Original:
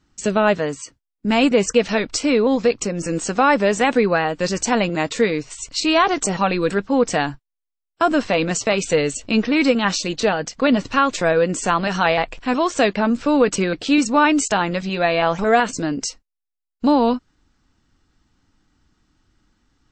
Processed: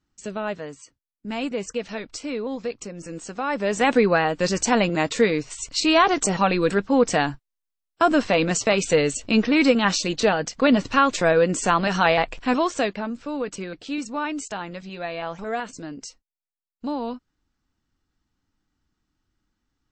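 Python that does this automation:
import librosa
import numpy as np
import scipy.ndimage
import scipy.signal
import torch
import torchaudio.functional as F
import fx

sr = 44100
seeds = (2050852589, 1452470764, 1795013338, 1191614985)

y = fx.gain(x, sr, db=fx.line((3.43, -12.0), (3.89, -1.0), (12.53, -1.0), (13.16, -12.5)))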